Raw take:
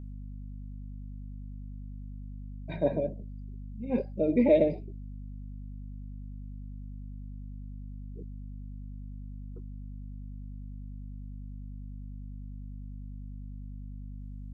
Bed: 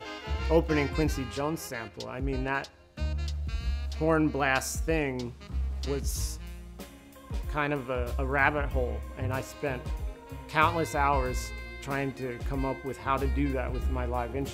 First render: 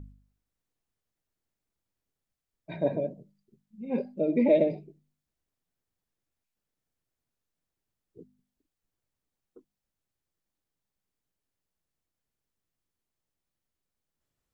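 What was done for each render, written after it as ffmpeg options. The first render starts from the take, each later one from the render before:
-af "bandreject=f=50:t=h:w=4,bandreject=f=100:t=h:w=4,bandreject=f=150:t=h:w=4,bandreject=f=200:t=h:w=4,bandreject=f=250:t=h:w=4"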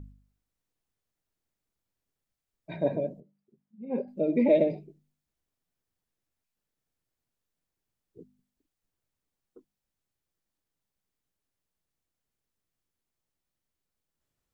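-filter_complex "[0:a]asettb=1/sr,asplit=3[a][b][c];[a]atrim=end=3.204[d];[b]atrim=start=3.2:end=4.08,asetpts=PTS-STARTPTS,afade=t=in:d=0.004:c=qsin,afade=t=out:st=0.876:d=0.004:c=qsin,bandpass=f=510:t=q:w=0.5[e];[c]atrim=start=4.076[f];[d][e]acrossfade=d=0.004:c1=hsin:c2=qsin[g];[g][f]acrossfade=d=0.004:c1=qsin:c2=hsin"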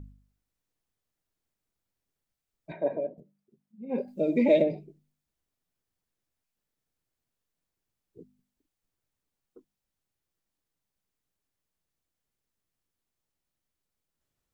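-filter_complex "[0:a]asettb=1/sr,asplit=3[a][b][c];[a]atrim=end=2.724[d];[b]atrim=start=2.72:end=3.18,asetpts=PTS-STARTPTS,afade=t=in:d=0.004:c=qsin,afade=t=out:st=0.456:d=0.004:c=qsin,acrossover=split=300 2600:gain=0.158 1 0.112[e][f][g];[e][f][g]amix=inputs=3:normalize=0[h];[c]atrim=start=3.176[i];[d][h]acrossfade=d=0.004:c1=hsin:c2=qsin[j];[j][i]acrossfade=d=0.004:c1=qsin:c2=hsin,asettb=1/sr,asplit=3[k][l][m];[k]atrim=end=3.894[n];[l]atrim=start=3.89:end=4.62,asetpts=PTS-STARTPTS,afade=t=in:d=0.004:c=qsin,afade=t=out:st=0.726:d=0.004:c=qsin,highshelf=f=2.9k:g=11.5[o];[m]atrim=start=4.616[p];[n][o]acrossfade=d=0.004:c1=hsin:c2=qsin[q];[q][p]acrossfade=d=0.004:c1=qsin:c2=hsin"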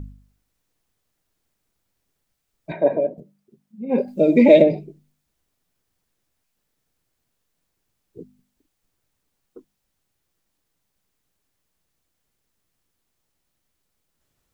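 -af "volume=10.5dB,alimiter=limit=-1dB:level=0:latency=1"

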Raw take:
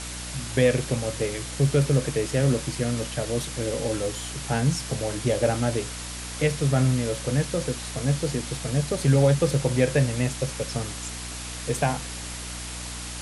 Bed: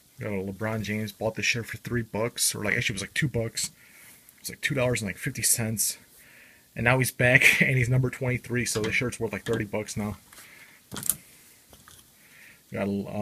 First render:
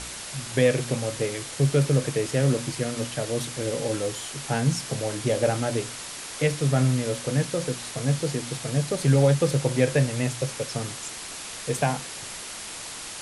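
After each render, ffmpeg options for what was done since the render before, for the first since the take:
-af "bandreject=f=60:t=h:w=4,bandreject=f=120:t=h:w=4,bandreject=f=180:t=h:w=4,bandreject=f=240:t=h:w=4,bandreject=f=300:t=h:w=4"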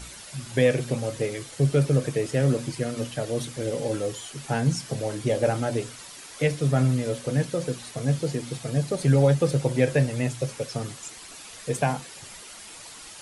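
-af "afftdn=nr=9:nf=-37"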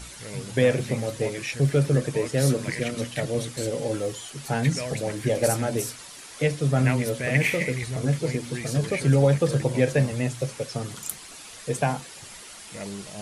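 -filter_complex "[1:a]volume=-7.5dB[a];[0:a][a]amix=inputs=2:normalize=0"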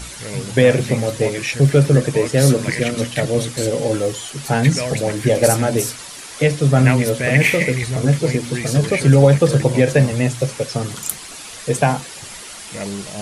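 -af "volume=8.5dB,alimiter=limit=-2dB:level=0:latency=1"

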